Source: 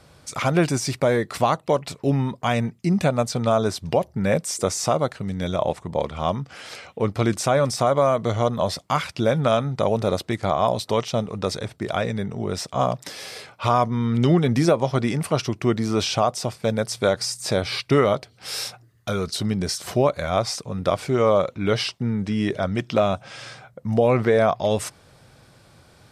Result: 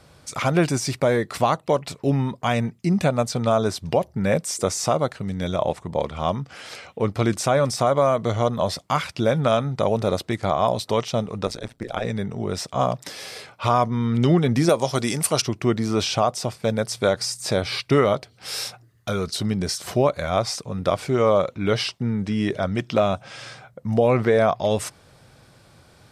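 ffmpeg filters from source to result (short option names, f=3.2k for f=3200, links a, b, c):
-filter_complex "[0:a]asettb=1/sr,asplit=3[a][b][c];[a]atrim=end=11.464[d];[b]atrim=start=11.46:end=12.05,asetpts=PTS-STARTPTS,afade=t=in:d=0.004:c=qsin,afade=t=out:st=0.586:d=0.004:c=qsin,tremolo=f=120:d=0.947[e];[c]atrim=start=12.046[f];[d][e]acrossfade=d=0.004:c1=hsin:c2=qsin[g];[g][f]acrossfade=d=0.004:c1=qsin:c2=hsin,asettb=1/sr,asplit=3[h][i][j];[h]atrim=end=14.694[k];[i]atrim=start=14.69:end=15.42,asetpts=PTS-STARTPTS,afade=t=in:d=0.004:c=qsin,afade=t=out:st=0.726:d=0.004:c=qsin,bass=f=250:g=-4,treble=f=4k:g=14[l];[j]atrim=start=15.416[m];[k][l]acrossfade=d=0.004:c1=hsin:c2=qsin[n];[n][m]acrossfade=d=0.004:c1=qsin:c2=hsin"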